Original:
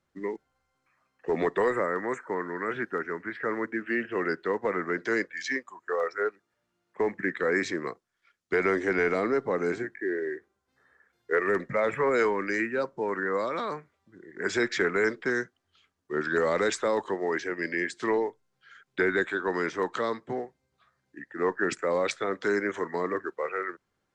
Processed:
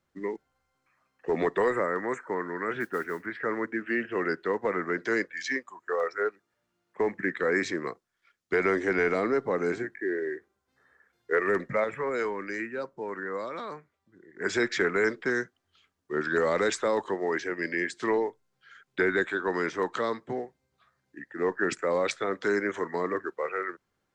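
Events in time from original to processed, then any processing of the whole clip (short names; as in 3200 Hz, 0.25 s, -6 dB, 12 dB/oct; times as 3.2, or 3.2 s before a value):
2.8–3.26 modulation noise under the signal 26 dB
11.84–14.41 gain -5.5 dB
20.24–21.52 dynamic EQ 1200 Hz, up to -5 dB, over -45 dBFS, Q 1.7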